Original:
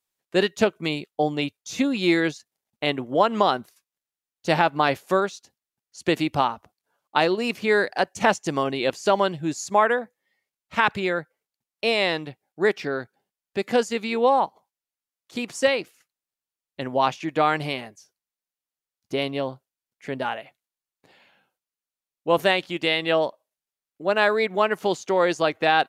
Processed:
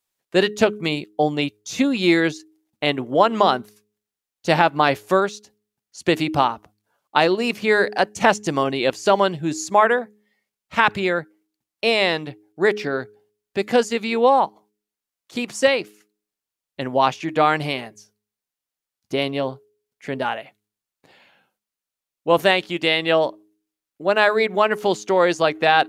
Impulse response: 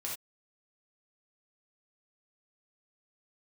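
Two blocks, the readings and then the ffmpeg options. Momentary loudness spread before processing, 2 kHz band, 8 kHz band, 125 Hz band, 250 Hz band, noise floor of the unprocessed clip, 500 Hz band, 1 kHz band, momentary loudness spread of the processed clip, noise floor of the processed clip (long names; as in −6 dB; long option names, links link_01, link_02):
10 LU, +3.5 dB, +3.5 dB, +3.5 dB, +3.0 dB, below −85 dBFS, +3.5 dB, +3.5 dB, 11 LU, below −85 dBFS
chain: -af "bandreject=frequency=104.8:width_type=h:width=4,bandreject=frequency=209.6:width_type=h:width=4,bandreject=frequency=314.4:width_type=h:width=4,bandreject=frequency=419.2:width_type=h:width=4,volume=3.5dB"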